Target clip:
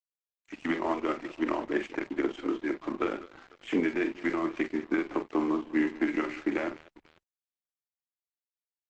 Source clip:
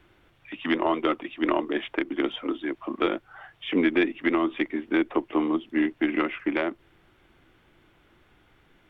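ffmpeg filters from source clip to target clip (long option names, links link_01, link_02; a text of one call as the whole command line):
ffmpeg -i in.wav -af "lowpass=frequency=2700:width=0.5412,lowpass=frequency=2700:width=1.3066,alimiter=limit=-16.5dB:level=0:latency=1:release=198,aecho=1:1:42|47|89|197|495:0.224|0.376|0.106|0.188|0.112,aresample=16000,aeval=exprs='sgn(val(0))*max(abs(val(0))-0.00668,0)':channel_layout=same,aresample=44100" -ar 48000 -c:a libopus -b:a 16k out.opus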